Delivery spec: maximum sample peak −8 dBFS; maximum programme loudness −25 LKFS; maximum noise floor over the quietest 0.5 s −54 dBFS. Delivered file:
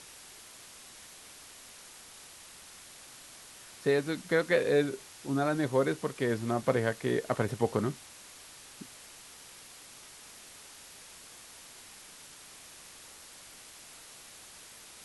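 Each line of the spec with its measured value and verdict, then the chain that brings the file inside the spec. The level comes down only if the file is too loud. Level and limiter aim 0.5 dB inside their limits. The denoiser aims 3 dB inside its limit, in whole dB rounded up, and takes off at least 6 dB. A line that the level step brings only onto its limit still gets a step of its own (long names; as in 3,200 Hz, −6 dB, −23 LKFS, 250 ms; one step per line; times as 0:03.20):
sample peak −12.5 dBFS: in spec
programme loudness −30.0 LKFS: in spec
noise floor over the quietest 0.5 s −51 dBFS: out of spec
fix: broadband denoise 6 dB, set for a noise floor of −51 dBFS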